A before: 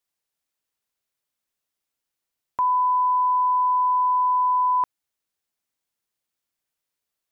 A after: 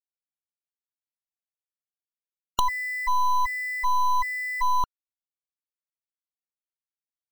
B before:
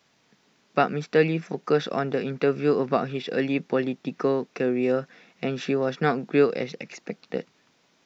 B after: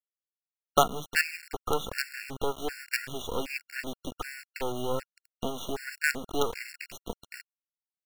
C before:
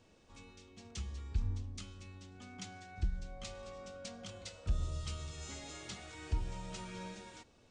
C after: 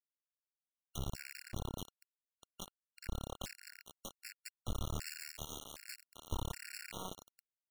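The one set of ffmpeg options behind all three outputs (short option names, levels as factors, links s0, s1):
-filter_complex "[0:a]acrossover=split=580|3100[s0][s1][s2];[s0]acompressor=threshold=0.0141:ratio=4[s3];[s1]acompressor=threshold=0.0891:ratio=4[s4];[s2]acompressor=threshold=0.00447:ratio=4[s5];[s3][s4][s5]amix=inputs=3:normalize=0,acrusher=bits=4:dc=4:mix=0:aa=0.000001,afftfilt=real='re*gt(sin(2*PI*1.3*pts/sr)*(1-2*mod(floor(b*sr/1024/1400),2)),0)':imag='im*gt(sin(2*PI*1.3*pts/sr)*(1-2*mod(floor(b*sr/1024/1400),2)),0)':win_size=1024:overlap=0.75,volume=1.68"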